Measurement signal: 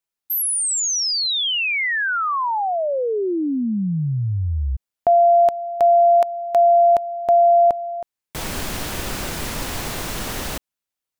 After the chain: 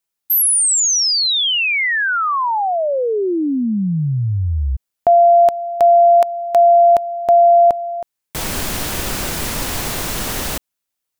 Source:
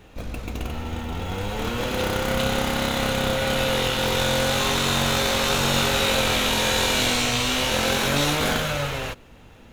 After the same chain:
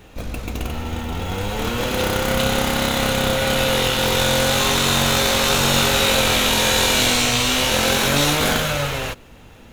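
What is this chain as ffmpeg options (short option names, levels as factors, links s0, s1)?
-af "highshelf=f=6000:g=4.5,volume=1.5"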